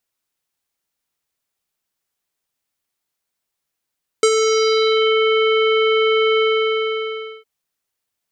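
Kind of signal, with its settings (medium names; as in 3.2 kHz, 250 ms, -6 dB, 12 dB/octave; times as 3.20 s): synth note square A4 24 dB/octave, low-pass 2.9 kHz, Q 3, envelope 1.5 oct, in 0.91 s, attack 2.5 ms, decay 0.06 s, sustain -5.5 dB, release 1.05 s, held 2.16 s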